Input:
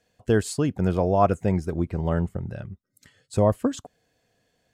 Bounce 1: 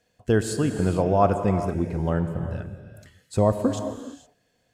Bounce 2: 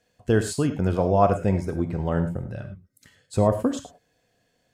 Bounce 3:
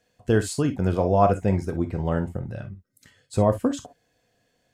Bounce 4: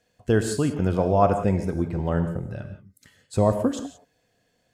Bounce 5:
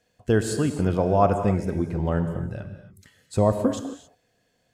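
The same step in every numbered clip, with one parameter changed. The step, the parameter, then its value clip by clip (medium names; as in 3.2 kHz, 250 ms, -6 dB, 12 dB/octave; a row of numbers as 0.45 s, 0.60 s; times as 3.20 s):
gated-style reverb, gate: 490 ms, 130 ms, 80 ms, 200 ms, 300 ms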